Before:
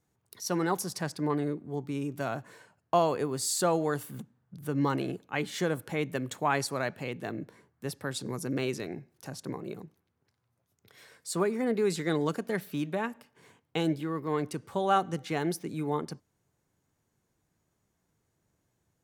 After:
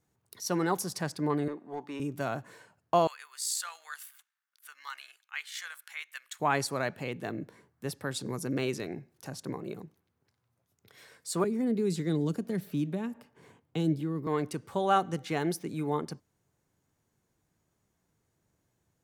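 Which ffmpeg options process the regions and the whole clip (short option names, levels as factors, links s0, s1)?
-filter_complex "[0:a]asettb=1/sr,asplit=3[s0][s1][s2];[s0]atrim=end=1.484[s3];[s1]atrim=start=1.48:end=2,asetpts=PTS-STARTPTS,afade=t=in:d=0.004:c=qsin,afade=t=out:st=0.516:d=0.004:c=qsin,highpass=330,aecho=1:1:1.1:0.36,atrim=end_sample=22932,asplit=2[s4][s5];[s5]highpass=f=720:p=1,volume=4.47,asoftclip=type=tanh:threshold=0.0447[s6];[s4][s6]amix=inputs=2:normalize=0,lowpass=f=1600:p=1,volume=0.501[s7];[s2]atrim=start=1.996[s8];[s3][s7]acrossfade=d=0.004:c1=hsin:c2=qsin[s9];[s9][s8]acrossfade=d=0.004:c1=qsin:c2=hsin,asettb=1/sr,asplit=3[s10][s11][s12];[s10]atrim=end=3.074[s13];[s11]atrim=start=3.07:end=6.4,asetpts=PTS-STARTPTS,afade=t=in:d=0.004:c=qsin,afade=t=out:st=3.326:d=0.004:c=qsin,highpass=f=1400:w=0.5412,highpass=f=1400:w=1.3066,tremolo=f=60:d=0.4[s14];[s12]atrim=start=6.396[s15];[s13][s14]acrossfade=d=0.004:c1=hsin:c2=qsin[s16];[s16][s15]acrossfade=d=0.004:c1=qsin:c2=hsin,asettb=1/sr,asplit=3[s17][s18][s19];[s17]atrim=end=11.444[s20];[s18]atrim=start=11.44:end=14.27,asetpts=PTS-STARTPTS,afade=t=in:d=0.004:c=qsin,afade=t=out:st=2.826:d=0.004:c=qsin,tiltshelf=f=1300:g=4,acrossover=split=340|3000[s21][s22][s23];[s22]acompressor=threshold=0.00282:ratio=2:attack=3.2:release=140:knee=2.83:detection=peak[s24];[s21][s24][s23]amix=inputs=3:normalize=0[s25];[s19]atrim=start=14.266[s26];[s20][s25]acrossfade=d=0.004:c1=hsin:c2=qsin[s27];[s27][s26]acrossfade=d=0.004:c1=qsin:c2=hsin"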